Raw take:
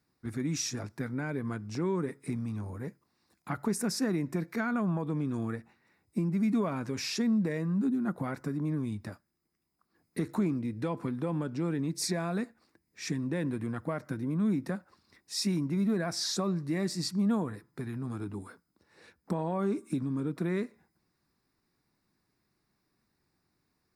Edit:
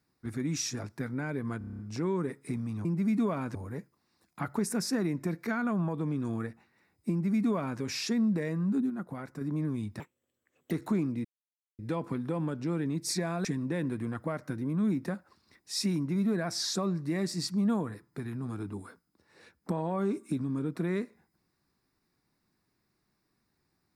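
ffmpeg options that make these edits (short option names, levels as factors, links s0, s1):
-filter_complex "[0:a]asplit=16[s0][s1][s2][s3][s4][s5][s6][s7][s8][s9][s10][s11][s12][s13][s14][s15];[s0]atrim=end=1.612[s16];[s1]atrim=start=1.578:end=1.612[s17];[s2]atrim=start=1.578:end=1.612[s18];[s3]atrim=start=1.578:end=1.612[s19];[s4]atrim=start=1.578:end=1.612[s20];[s5]atrim=start=1.578:end=1.612[s21];[s6]atrim=start=1.578:end=1.612[s22];[s7]atrim=start=1.578:end=2.642[s23];[s8]atrim=start=6.198:end=6.902[s24];[s9]atrim=start=2.638:end=7.992[s25];[s10]atrim=start=7.988:end=8.502,asetpts=PTS-STARTPTS,volume=0.531[s26];[s11]atrim=start=8.498:end=9.094[s27];[s12]atrim=start=9.09:end=10.18,asetpts=PTS-STARTPTS,asetrate=67914,aresample=44100[s28];[s13]atrim=start=10.176:end=10.72,asetpts=PTS-STARTPTS,afade=t=out:st=0.54:d=0.004:c=hsin,apad=pad_dur=0.54[s29];[s14]atrim=start=10.72:end=12.382,asetpts=PTS-STARTPTS,afade=t=in:d=0.004:c=hsin[s30];[s15]atrim=start=13.058[s31];[s16][s17]acrossfade=d=0.004:c1=hsin:c2=hsin[s32];[s32][s18]acrossfade=d=0.004:c1=hsin:c2=hsin[s33];[s33][s19]acrossfade=d=0.004:c1=hsin:c2=hsin[s34];[s34][s20]acrossfade=d=0.004:c1=hsin:c2=hsin[s35];[s35][s21]acrossfade=d=0.004:c1=hsin:c2=hsin[s36];[s36][s22]acrossfade=d=0.004:c1=hsin:c2=hsin[s37];[s37][s23]acrossfade=d=0.004:c1=hsin:c2=hsin[s38];[s38][s24]acrossfade=d=0.004:c1=hsin:c2=hsin[s39];[s39][s25]acrossfade=d=0.004:c1=hsin:c2=hsin[s40];[s40][s26]acrossfade=d=0.004:c1=hsin:c2=hsin[s41];[s41][s27]acrossfade=d=0.004:c1=hsin:c2=hsin[s42];[s42][s28]acrossfade=d=0.004:c1=hsin:c2=hsin[s43];[s29][s30]concat=n=2:v=0:a=1[s44];[s43][s44]acrossfade=d=0.004:c1=hsin:c2=hsin[s45];[s45][s31]acrossfade=d=0.004:c1=hsin:c2=hsin"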